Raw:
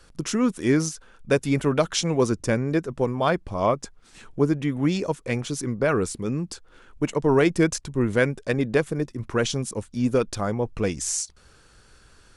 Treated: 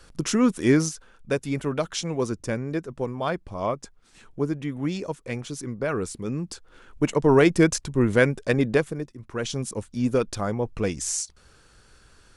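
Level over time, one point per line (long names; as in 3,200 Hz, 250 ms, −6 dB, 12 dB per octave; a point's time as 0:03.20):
0:00.69 +2 dB
0:01.39 −5 dB
0:05.89 −5 dB
0:07.04 +2 dB
0:08.69 +2 dB
0:09.22 −10.5 dB
0:09.62 −1 dB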